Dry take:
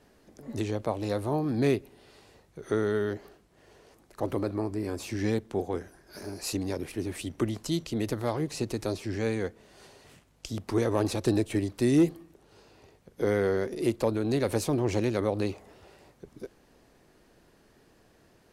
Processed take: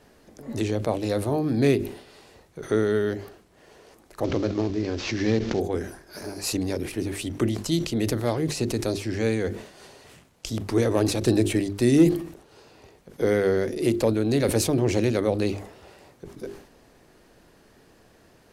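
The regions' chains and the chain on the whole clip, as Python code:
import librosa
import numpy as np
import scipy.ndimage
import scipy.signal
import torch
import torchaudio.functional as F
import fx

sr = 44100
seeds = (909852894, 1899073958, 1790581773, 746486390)

y = fx.chain(x, sr, fx.cvsd(bps=32000),
    fx.pre_swell(db_per_s=79.0), at=(4.24, 5.6))
y = fx.hum_notches(y, sr, base_hz=50, count=8)
y = fx.dynamic_eq(y, sr, hz=1000.0, q=1.5, threshold_db=-46.0, ratio=4.0, max_db=-6)
y = fx.sustainer(y, sr, db_per_s=100.0)
y = y * 10.0 ** (5.5 / 20.0)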